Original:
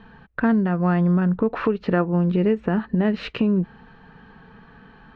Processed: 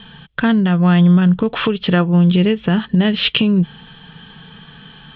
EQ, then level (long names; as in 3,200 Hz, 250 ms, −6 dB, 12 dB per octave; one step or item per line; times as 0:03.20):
low-pass with resonance 3,300 Hz, resonance Q 12
parametric band 150 Hz +11 dB 0.63 octaves
high-shelf EQ 2,100 Hz +7.5 dB
+1.5 dB